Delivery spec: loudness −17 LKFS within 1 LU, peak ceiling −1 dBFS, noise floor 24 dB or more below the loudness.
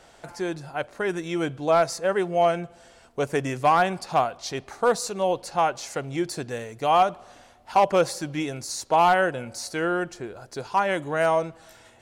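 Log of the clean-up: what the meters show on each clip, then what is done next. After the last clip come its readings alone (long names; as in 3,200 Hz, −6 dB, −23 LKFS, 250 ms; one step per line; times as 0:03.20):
share of clipped samples 0.3%; peaks flattened at −11.5 dBFS; integrated loudness −24.5 LKFS; sample peak −11.5 dBFS; target loudness −17.0 LKFS
→ clipped peaks rebuilt −11.5 dBFS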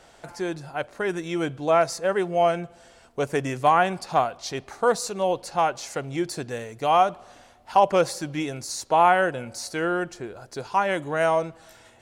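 share of clipped samples 0.0%; integrated loudness −24.5 LKFS; sample peak −6.0 dBFS; target loudness −17.0 LKFS
→ level +7.5 dB
brickwall limiter −1 dBFS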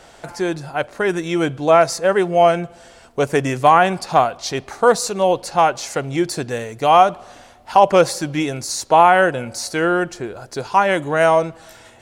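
integrated loudness −17.5 LKFS; sample peak −1.0 dBFS; background noise floor −46 dBFS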